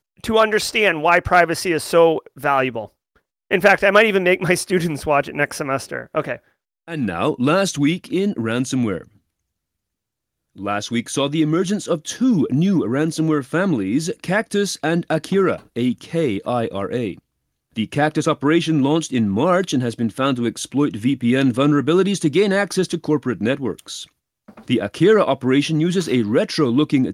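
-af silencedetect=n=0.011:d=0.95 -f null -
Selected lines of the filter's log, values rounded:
silence_start: 9.08
silence_end: 10.56 | silence_duration: 1.49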